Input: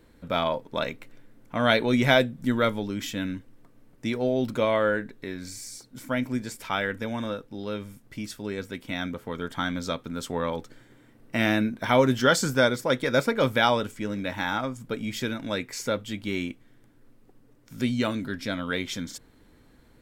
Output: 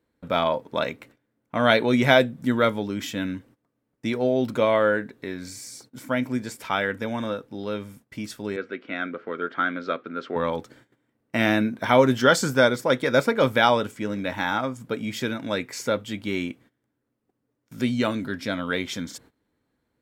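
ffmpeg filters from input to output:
-filter_complex "[0:a]asettb=1/sr,asplit=3[a][b][c];[a]atrim=end=8.564[d];[b]atrim=start=8.56:end=10.36,asetpts=PTS-STARTPTS,afade=t=in:d=0.004:c=qsin,afade=t=out:st=1.796:d=0.004:c=qsin,highpass=280,equalizer=f=370:t=q:w=4:g=5,equalizer=f=900:t=q:w=4:g=-10,equalizer=f=1.4k:t=q:w=4:g=7,equalizer=f=3.4k:t=q:w=4:g=-6,lowpass=f=3.7k:w=0.5412,lowpass=f=3.7k:w=1.3066[e];[c]atrim=start=10.356[f];[d][e]acrossfade=d=0.004:c1=hsin:c2=qsin[g];[g][f]acrossfade=d=0.004:c1=qsin:c2=hsin,highpass=61,equalizer=f=730:w=0.33:g=3.5,agate=range=-18dB:threshold=-50dB:ratio=16:detection=peak"

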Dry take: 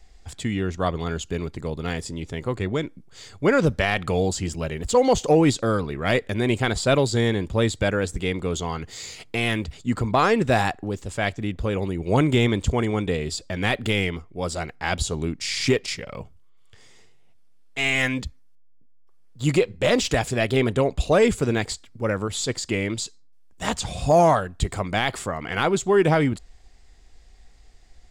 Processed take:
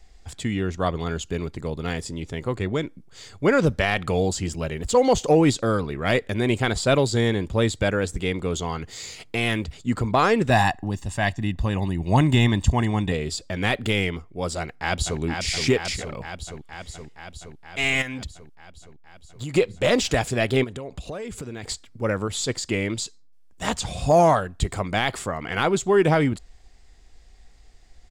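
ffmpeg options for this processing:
-filter_complex "[0:a]asettb=1/sr,asplit=3[a][b][c];[a]atrim=end=10.504[d];[b]atrim=start=10.5:end=13.12,asetpts=PTS-STARTPTS,afade=t=in:d=0.004:c=qsin,afade=t=out:st=2.616:d=0.004:c=qsin,aecho=1:1:1.1:0.65,atrim=end_sample=115542[e];[c]atrim=start=13.116[f];[d][e]acrossfade=d=0.004:c1=hsin:c2=qsin[g];[g][f]acrossfade=d=0.004:c1=qsin:c2=hsin,asplit=2[h][i];[i]afade=t=in:st=14.59:d=0.01,afade=t=out:st=15.2:d=0.01,aecho=0:1:470|940|1410|1880|2350|2820|3290|3760|4230|4700|5170|5640:0.530884|0.398163|0.298622|0.223967|0.167975|0.125981|0.094486|0.0708645|0.0531484|0.0398613|0.029896|0.022422[j];[h][j]amix=inputs=2:normalize=0,asplit=3[k][l][m];[k]afade=t=out:st=18.01:d=0.02[n];[l]acompressor=threshold=-28dB:ratio=10:attack=3.2:release=140:knee=1:detection=peak,afade=t=in:st=18.01:d=0.02,afade=t=out:st=19.54:d=0.02[o];[m]afade=t=in:st=19.54:d=0.02[p];[n][o][p]amix=inputs=3:normalize=0,asplit=3[q][r][s];[q]afade=t=out:st=20.63:d=0.02[t];[r]acompressor=threshold=-30dB:ratio=10:attack=3.2:release=140:knee=1:detection=peak,afade=t=in:st=20.63:d=0.02,afade=t=out:st=21.63:d=0.02[u];[s]afade=t=in:st=21.63:d=0.02[v];[t][u][v]amix=inputs=3:normalize=0"

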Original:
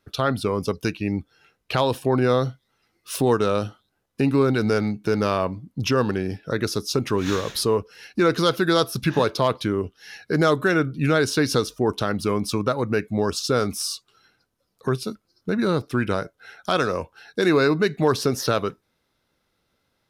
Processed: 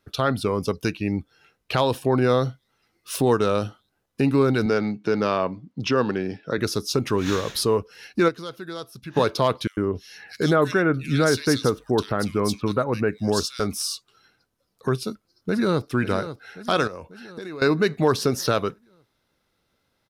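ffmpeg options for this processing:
-filter_complex "[0:a]asettb=1/sr,asplit=3[a][b][c];[a]atrim=end=4.664[d];[b]atrim=start=4.66:end=6.58,asetpts=PTS-STARTPTS,afade=t=in:d=0.004:c=qsin,afade=t=out:st=1.916:d=0.004:c=qsin,highpass=150,lowpass=5.2k[e];[c]atrim=start=6.576[f];[d][e]acrossfade=d=0.004:c1=hsin:c2=qsin[g];[g][f]acrossfade=d=0.004:c1=qsin:c2=hsin,asettb=1/sr,asplit=3[h][i][j];[h]atrim=end=9.674[k];[i]atrim=start=9.67:end=13.6,asetpts=PTS-STARTPTS,afade=t=in:d=0.004:c=qsin,afade=t=out:st=3.926:d=0.004:c=qsin,acrossover=split=2400[l][m];[l]adelay=100[n];[n][m]amix=inputs=2:normalize=0,atrim=end_sample=173313[o];[j]atrim=start=13.596[p];[k][o]acrossfade=d=0.004:c1=hsin:c2=qsin[q];[q][p]acrossfade=d=0.004:c1=qsin:c2=hsin,asplit=2[r][s];[s]afade=t=in:st=14.98:d=0.01,afade=t=out:st=15.88:d=0.01,aecho=0:1:540|1080|1620|2160|2700|3240:0.266073|0.14634|0.0804869|0.0442678|0.0243473|0.013391[t];[r][t]amix=inputs=2:normalize=0,asettb=1/sr,asplit=3[u][v][w];[u]atrim=end=16.874[x];[v]atrim=start=16.87:end=17.62,asetpts=PTS-STARTPTS,afade=t=in:d=0.004:c=qsin,afade=t=out:st=0.746:d=0.004:c=qsin,acompressor=threshold=-31dB:ratio=12:attack=3.2:release=140:knee=1:detection=peak[y];[w]atrim=start=17.616[z];[x][y]acrossfade=d=0.004:c1=hsin:c2=qsin[aa];[aa][z]acrossfade=d=0.004:c1=qsin:c2=hsin,asplit=3[ab][ac][ad];[ab]atrim=end=8.41,asetpts=PTS-STARTPTS,afade=t=out:st=8.28:d=0.13:c=exp:silence=0.177828[ae];[ac]atrim=start=8.41:end=9.04,asetpts=PTS-STARTPTS,volume=-15dB[af];[ad]atrim=start=9.04,asetpts=PTS-STARTPTS,afade=t=in:d=0.13:c=exp:silence=0.177828[ag];[ae][af][ag]concat=n=3:v=0:a=1"

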